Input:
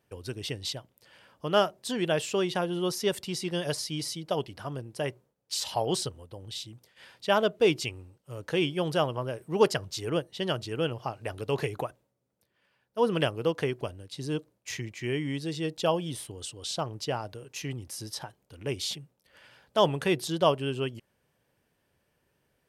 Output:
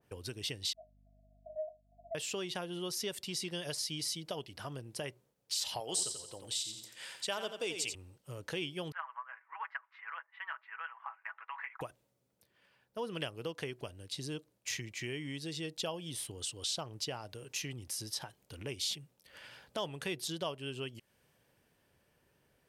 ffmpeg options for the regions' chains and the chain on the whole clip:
-filter_complex "[0:a]asettb=1/sr,asplit=3[a][b][c];[a]atrim=end=0.734[d];[b]atrim=start=0.73:end=2.15,asetpts=PTS-STARTPTS,afade=t=in:d=0.004:c=qsin,afade=t=out:st=1.416:d=0.004:c=qsin,asuperpass=centerf=660:order=20:qfactor=7.3,aeval=exprs='val(0)+0.000562*(sin(2*PI*50*n/s)+sin(2*PI*2*50*n/s)/2+sin(2*PI*3*50*n/s)/3+sin(2*PI*4*50*n/s)/4+sin(2*PI*5*50*n/s)/5)':c=same[e];[c]atrim=start=2.146[f];[d][e]acrossfade=d=0.004:c1=hsin:c2=qsin[g];[g][f]acrossfade=d=0.004:c1=qsin:c2=hsin,asettb=1/sr,asplit=3[h][i][j];[h]atrim=end=5.804[k];[i]atrim=start=5.8:end=7.95,asetpts=PTS-STARTPTS,afade=t=in:d=0.004:c=qsin,afade=t=out:st=2.146:d=0.004:c=qsin,highpass=f=340:p=1,equalizer=f=7.9k:t=o:w=0.52:g=11,aecho=1:1:87|174|261|348:0.376|0.132|0.046|0.0161,atrim=end_sample=94815[l];[j]atrim=start=7.946[m];[k][l]acrossfade=d=0.004:c1=hsin:c2=qsin[n];[n][m]acrossfade=d=0.004:c1=qsin:c2=hsin,asettb=1/sr,asplit=3[o][p][q];[o]atrim=end=8.924[r];[p]atrim=start=8.92:end=11.81,asetpts=PTS-STARTPTS,afade=t=in:d=0.004:c=qsin,afade=t=out:st=2.886:d=0.004:c=qsin,asuperpass=centerf=1400:order=8:qfactor=1.2,aecho=1:1:6.1:0.56,atrim=end_sample=127449[s];[q]atrim=start=11.806[t];[r][s]acrossfade=d=0.004:c1=hsin:c2=qsin[u];[u][t]acrossfade=d=0.004:c1=qsin:c2=hsin,acompressor=threshold=-45dB:ratio=2.5,adynamicequalizer=threshold=0.00141:dfrequency=1800:dqfactor=0.7:tfrequency=1800:tqfactor=0.7:attack=5:release=100:ratio=0.375:range=3.5:mode=boostabove:tftype=highshelf,volume=1dB"

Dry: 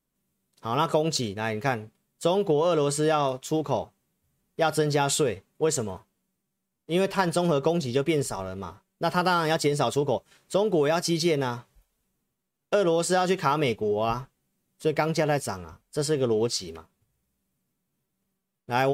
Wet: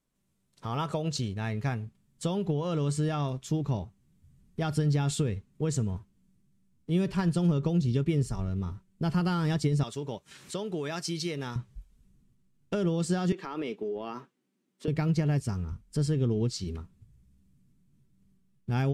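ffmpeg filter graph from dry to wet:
-filter_complex "[0:a]asettb=1/sr,asplit=3[a][b][c];[a]atrim=end=9.834[d];[b]atrim=start=9.83:end=11.56,asetpts=PTS-STARTPTS,afade=t=in:d=0.004:c=qsin,afade=t=out:st=1.726:d=0.004:c=qsin,highpass=f=820:p=1,acompressor=mode=upward:threshold=-36dB:ratio=2.5:attack=3.2:release=140:knee=2.83:detection=peak[e];[c]atrim=start=11.556[f];[d][e]acrossfade=d=0.004:c1=hsin:c2=qsin[g];[g][f]acrossfade=d=0.004:c1=qsin:c2=hsin,asettb=1/sr,asplit=3[h][i][j];[h]atrim=end=13.324[k];[i]atrim=start=13.32:end=14.88,asetpts=PTS-STARTPTS,afade=t=in:d=0.004:c=qsin,afade=t=out:st=1.556:d=0.004:c=qsin,highpass=f=290:w=0.5412,highpass=f=290:w=1.3066,equalizer=f=10k:w=0.46:g=-9,acompressor=threshold=-26dB:ratio=3:attack=3.2:release=140:knee=1:detection=peak[l];[j]atrim=start=14.876[m];[k][l]acrossfade=d=0.004:c1=hsin:c2=qsin[n];[n][m]acrossfade=d=0.004:c1=qsin:c2=hsin,lowpass=10k,asubboost=boost=9:cutoff=200,acompressor=threshold=-41dB:ratio=1.5"

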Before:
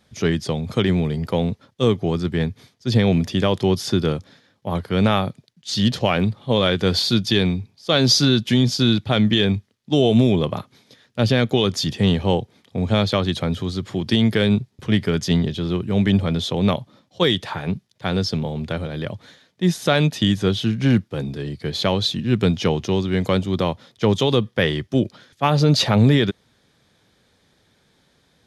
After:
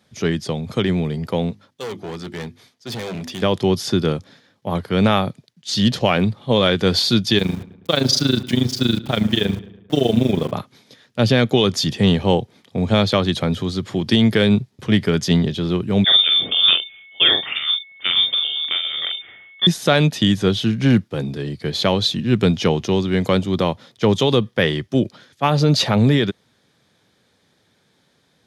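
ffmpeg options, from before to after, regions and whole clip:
-filter_complex "[0:a]asettb=1/sr,asplit=3[a][b][c];[a]atrim=end=1.514[d];[b]atrim=start=1.51:end=3.42,asetpts=PTS-STARTPTS,afade=t=in:d=0.004:c=qsin,afade=t=out:st=1.906:d=0.004:c=qsin,equalizer=f=93:w=0.33:g=-9.5,bandreject=f=50:t=h:w=6,bandreject=f=100:t=h:w=6,bandreject=f=150:t=h:w=6,bandreject=f=200:t=h:w=6,bandreject=f=250:t=h:w=6,bandreject=f=300:t=h:w=6,bandreject=f=350:t=h:w=6,volume=26dB,asoftclip=hard,volume=-26dB[e];[c]atrim=start=3.416[f];[d][e]acrossfade=d=0.004:c1=hsin:c2=qsin[g];[g][f]acrossfade=d=0.004:c1=qsin:c2=hsin,asettb=1/sr,asplit=3[h][i][j];[h]atrim=end=7.384[k];[i]atrim=start=7.38:end=10.53,asetpts=PTS-STARTPTS,afade=t=in:d=0.004:c=qsin,afade=t=out:st=3.146:d=0.004:c=qsin,tremolo=f=25:d=0.857,aeval=exprs='val(0)*gte(abs(val(0)),0.0168)':c=same,asplit=2[l][m];[m]adelay=108,lowpass=f=2.8k:p=1,volume=-17dB,asplit=2[n][o];[o]adelay=108,lowpass=f=2.8k:p=1,volume=0.51,asplit=2[p][q];[q]adelay=108,lowpass=f=2.8k:p=1,volume=0.51,asplit=2[r][s];[s]adelay=108,lowpass=f=2.8k:p=1,volume=0.51[t];[l][n][p][r][t]amix=inputs=5:normalize=0,atrim=end_sample=138915[u];[j]atrim=start=10.526[v];[k][u]acrossfade=d=0.004:c1=hsin:c2=qsin[w];[w][v]acrossfade=d=0.004:c1=qsin:c2=hsin,asettb=1/sr,asplit=3[x][y][z];[x]atrim=end=16.044[aa];[y]atrim=start=16.04:end=19.67,asetpts=PTS-STARTPTS,afade=t=in:d=0.004:c=qsin,afade=t=out:st=3.626:d=0.004:c=qsin,lowpass=f=3.1k:t=q:w=0.5098,lowpass=f=3.1k:t=q:w=0.6013,lowpass=f=3.1k:t=q:w=0.9,lowpass=f=3.1k:t=q:w=2.563,afreqshift=-3700,aeval=exprs='val(0)+0.00355*sin(2*PI*2200*n/s)':c=same,asplit=2[ab][ac];[ac]adelay=45,volume=-5dB[ad];[ab][ad]amix=inputs=2:normalize=0,atrim=end_sample=160083[ae];[z]atrim=start=19.666[af];[aa][ae]acrossfade=d=0.004:c1=hsin:c2=qsin[ag];[ag][af]acrossfade=d=0.004:c1=qsin:c2=hsin,highpass=96,dynaudnorm=f=340:g=21:m=5.5dB"

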